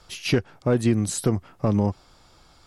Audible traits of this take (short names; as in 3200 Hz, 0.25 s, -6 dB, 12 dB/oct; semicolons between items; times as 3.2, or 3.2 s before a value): noise floor -56 dBFS; spectral tilt -6.0 dB/oct